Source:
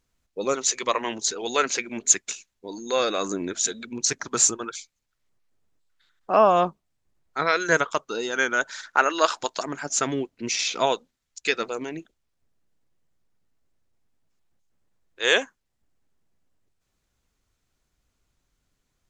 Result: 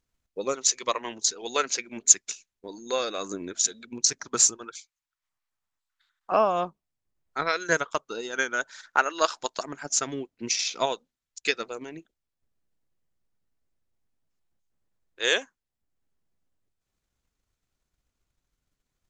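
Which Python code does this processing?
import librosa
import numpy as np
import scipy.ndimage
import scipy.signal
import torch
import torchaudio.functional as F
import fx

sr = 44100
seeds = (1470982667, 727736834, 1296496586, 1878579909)

y = fx.dynamic_eq(x, sr, hz=5300.0, q=1.7, threshold_db=-38.0, ratio=4.0, max_db=6)
y = fx.transient(y, sr, attack_db=5, sustain_db=-3)
y = fx.low_shelf_res(y, sr, hz=670.0, db=-11.5, q=1.5, at=(4.78, 6.32))
y = F.gain(torch.from_numpy(y), -6.5).numpy()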